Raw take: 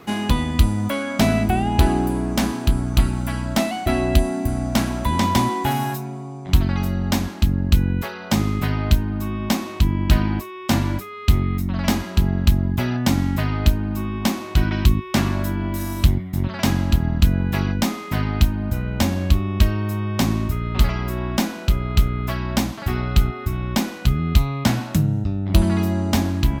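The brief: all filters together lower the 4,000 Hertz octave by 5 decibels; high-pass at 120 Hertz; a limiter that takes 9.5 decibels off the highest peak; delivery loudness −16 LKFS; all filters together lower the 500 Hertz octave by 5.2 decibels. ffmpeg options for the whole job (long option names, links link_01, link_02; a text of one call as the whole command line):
ffmpeg -i in.wav -af "highpass=120,equalizer=frequency=500:width_type=o:gain=-8,equalizer=frequency=4000:width_type=o:gain=-6.5,volume=11.5dB,alimiter=limit=-5dB:level=0:latency=1" out.wav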